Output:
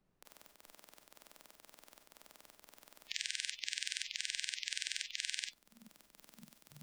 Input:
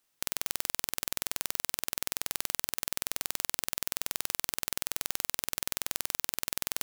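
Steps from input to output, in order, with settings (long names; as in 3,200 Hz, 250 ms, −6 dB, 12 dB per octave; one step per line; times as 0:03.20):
high-pass filter 190 Hz 12 dB per octave
high-shelf EQ 5,700 Hz −4 dB
fake sidechain pumping 119 BPM, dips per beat 1, −15 dB, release 157 ms
parametric band 490 Hz +9 dB 2.9 octaves, from 0:03.07 2,800 Hz, from 0:05.47 180 Hz
four-comb reverb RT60 0.38 s, combs from 27 ms, DRR 4.5 dB
background noise brown −47 dBFS
noise reduction from a noise print of the clip's start 27 dB
multiband upward and downward compressor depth 40%
level −7.5 dB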